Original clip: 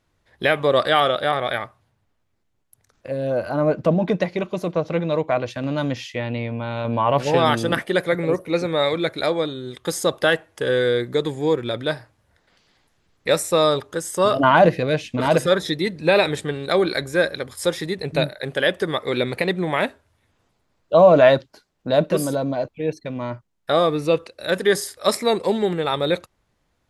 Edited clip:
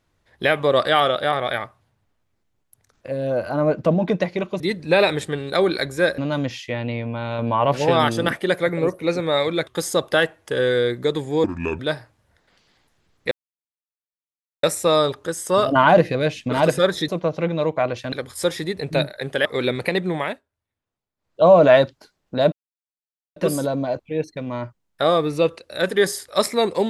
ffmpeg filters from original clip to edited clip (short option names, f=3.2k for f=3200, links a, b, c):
-filter_complex "[0:a]asplit=13[a][b][c][d][e][f][g][h][i][j][k][l][m];[a]atrim=end=4.602[n];[b]atrim=start=15.758:end=17.342[o];[c]atrim=start=5.638:end=9.132[p];[d]atrim=start=9.768:end=11.544[q];[e]atrim=start=11.54:end=11.79,asetpts=PTS-STARTPTS,asetrate=31311,aresample=44100,atrim=end_sample=15528,asetpts=PTS-STARTPTS[r];[f]atrim=start=11.786:end=13.31,asetpts=PTS-STARTPTS,afade=t=out:st=1.52:d=0.004:c=hsin,apad=pad_dur=1.32[s];[g]atrim=start=13.31:end=15.762,asetpts=PTS-STARTPTS,afade=t=in:d=0.004:c=hsin[t];[h]atrim=start=4.598:end=5.642[u];[i]atrim=start=17.338:end=18.672[v];[j]atrim=start=18.978:end=19.94,asetpts=PTS-STARTPTS,afade=t=out:st=0.682:d=0.28:silence=0.1[w];[k]atrim=start=19.94:end=20.7,asetpts=PTS-STARTPTS,volume=-20dB[x];[l]atrim=start=20.7:end=22.05,asetpts=PTS-STARTPTS,afade=t=in:d=0.28:silence=0.1,afade=t=out:st=1.346:d=0.004:c=hsin,apad=pad_dur=0.84[y];[m]atrim=start=22.05,asetpts=PTS-STARTPTS,afade=t=in:d=0.004:c=hsin[z];[n][o]acrossfade=d=0.004:c1=hsin:c2=hsin[aa];[aa][p]acrossfade=d=0.004:c1=hsin:c2=hsin[ab];[ab][q]acrossfade=d=0.004:c1=hsin:c2=hsin[ac];[ac][r]acrossfade=d=0.004:c1=hsin:c2=hsin[ad];[s][t]concat=n=2:v=0:a=1[ae];[ad][ae]acrossfade=d=0.004:c1=hsin:c2=hsin[af];[af][u]acrossfade=d=0.004:c1=hsin:c2=hsin[ag];[ag][v]acrossfade=d=0.004:c1=hsin:c2=hsin[ah];[w][x][y][z]concat=n=4:v=0:a=1[ai];[ah][ai]acrossfade=d=0.004:c1=hsin:c2=hsin"